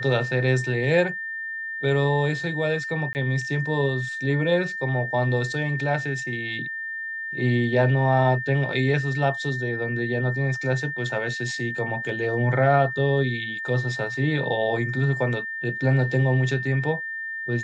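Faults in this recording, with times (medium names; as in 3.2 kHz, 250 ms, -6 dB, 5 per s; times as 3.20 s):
whine 1.8 kHz -29 dBFS
3.13–3.15 s: dropout 19 ms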